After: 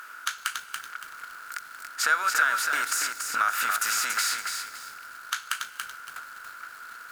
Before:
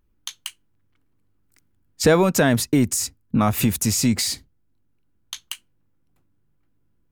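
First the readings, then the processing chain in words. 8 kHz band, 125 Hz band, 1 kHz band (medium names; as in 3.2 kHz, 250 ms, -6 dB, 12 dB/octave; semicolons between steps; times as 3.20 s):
-3.5 dB, under -40 dB, +2.0 dB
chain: spectral levelling over time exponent 0.6; resonant high-pass 1.4 kHz, resonance Q 12; FDN reverb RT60 1.7 s, high-frequency decay 0.8×, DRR 16 dB; compression 2:1, threshold -39 dBFS, peak gain reduction 18.5 dB; bit-crushed delay 283 ms, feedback 35%, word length 8-bit, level -4.5 dB; trim +4 dB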